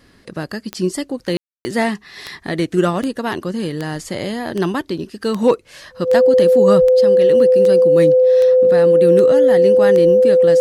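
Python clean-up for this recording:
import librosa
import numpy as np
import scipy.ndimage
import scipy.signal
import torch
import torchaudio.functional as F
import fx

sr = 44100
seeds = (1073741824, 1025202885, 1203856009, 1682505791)

y = fx.fix_declick_ar(x, sr, threshold=10.0)
y = fx.notch(y, sr, hz=510.0, q=30.0)
y = fx.fix_ambience(y, sr, seeds[0], print_start_s=0.01, print_end_s=0.51, start_s=1.37, end_s=1.65)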